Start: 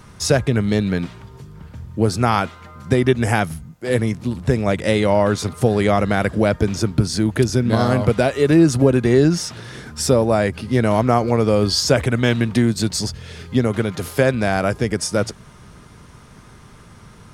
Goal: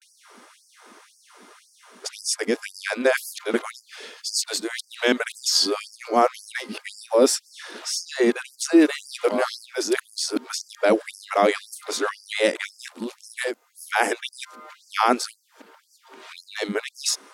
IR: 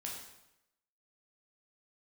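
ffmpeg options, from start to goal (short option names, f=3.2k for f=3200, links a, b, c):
-af "areverse,afftfilt=real='re*gte(b*sr/1024,210*pow(4700/210,0.5+0.5*sin(2*PI*1.9*pts/sr)))':imag='im*gte(b*sr/1024,210*pow(4700/210,0.5+0.5*sin(2*PI*1.9*pts/sr)))':win_size=1024:overlap=0.75"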